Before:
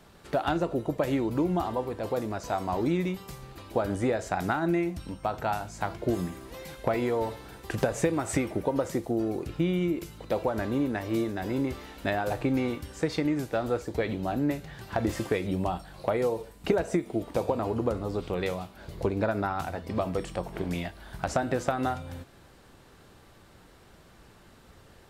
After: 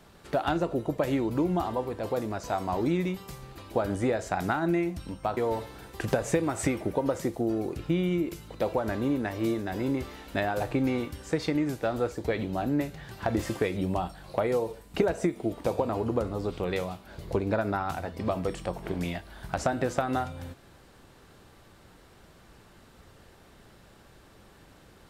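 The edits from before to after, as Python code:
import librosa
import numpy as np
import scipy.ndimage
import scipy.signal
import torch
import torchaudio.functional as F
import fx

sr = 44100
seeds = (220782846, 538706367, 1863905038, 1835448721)

y = fx.edit(x, sr, fx.cut(start_s=5.37, length_s=1.7), tone=tone)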